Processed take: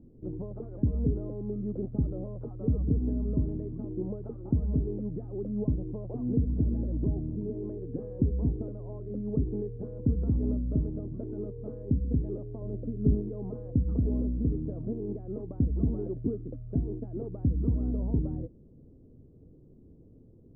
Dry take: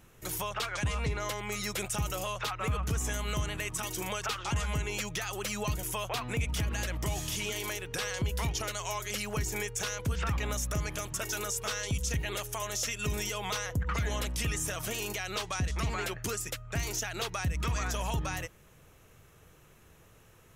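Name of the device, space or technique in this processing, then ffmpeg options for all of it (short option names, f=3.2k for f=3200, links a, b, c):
under water: -filter_complex "[0:a]asettb=1/sr,asplit=3[a][b][c];[a]atrim=end=12.624[d];[b]atrim=start=12.62:end=13.15,asetpts=PTS-STARTPTS,afade=t=in:d=0.004:c=qsin,afade=t=out:st=0.526:d=0.004:c=qsin,tiltshelf=f=690:g=4.5[e];[c]atrim=start=13.146[f];[d][e]acrossfade=d=0.004:c1=hsin:c2=qsin[g];[g][f]acrossfade=d=0.004:c1=qsin:c2=hsin,lowpass=f=440:w=0.5412,lowpass=f=440:w=1.3066,equalizer=f=260:t=o:w=0.52:g=11.5,volume=4dB"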